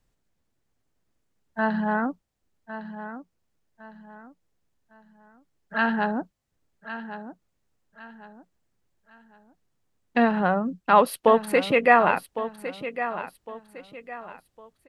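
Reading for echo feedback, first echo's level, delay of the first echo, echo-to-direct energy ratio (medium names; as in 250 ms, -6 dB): 33%, -12.0 dB, 1107 ms, -11.5 dB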